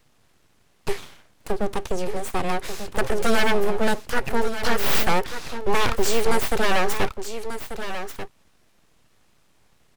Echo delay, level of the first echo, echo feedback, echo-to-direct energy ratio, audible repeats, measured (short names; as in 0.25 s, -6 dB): 1.189 s, -10.0 dB, no steady repeat, -10.0 dB, 1